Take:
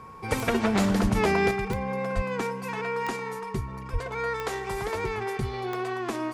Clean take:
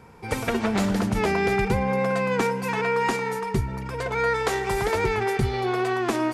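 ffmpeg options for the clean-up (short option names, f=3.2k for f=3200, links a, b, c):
-filter_complex "[0:a]adeclick=t=4,bandreject=f=1.1k:w=30,asplit=3[a][b][c];[a]afade=t=out:st=1.02:d=0.02[d];[b]highpass=f=140:w=0.5412,highpass=f=140:w=1.3066,afade=t=in:st=1.02:d=0.02,afade=t=out:st=1.14:d=0.02[e];[c]afade=t=in:st=1.14:d=0.02[f];[d][e][f]amix=inputs=3:normalize=0,asplit=3[g][h][i];[g]afade=t=out:st=2.15:d=0.02[j];[h]highpass=f=140:w=0.5412,highpass=f=140:w=1.3066,afade=t=in:st=2.15:d=0.02,afade=t=out:st=2.27:d=0.02[k];[i]afade=t=in:st=2.27:d=0.02[l];[j][k][l]amix=inputs=3:normalize=0,asplit=3[m][n][o];[m]afade=t=out:st=3.92:d=0.02[p];[n]highpass=f=140:w=0.5412,highpass=f=140:w=1.3066,afade=t=in:st=3.92:d=0.02,afade=t=out:st=4.04:d=0.02[q];[o]afade=t=in:st=4.04:d=0.02[r];[p][q][r]amix=inputs=3:normalize=0,asetnsamples=n=441:p=0,asendcmd='1.51 volume volume 6.5dB',volume=0dB"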